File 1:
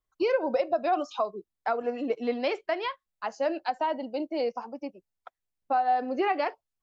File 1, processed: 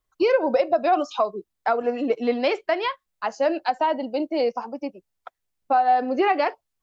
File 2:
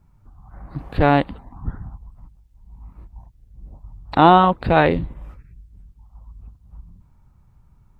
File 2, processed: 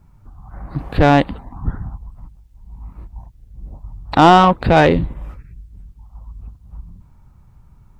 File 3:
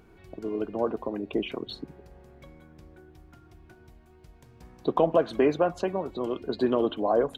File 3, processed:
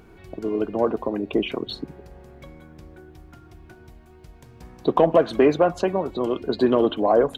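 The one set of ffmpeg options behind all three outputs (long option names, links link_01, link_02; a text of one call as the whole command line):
ffmpeg -i in.wav -af "acontrast=88,volume=-1dB" out.wav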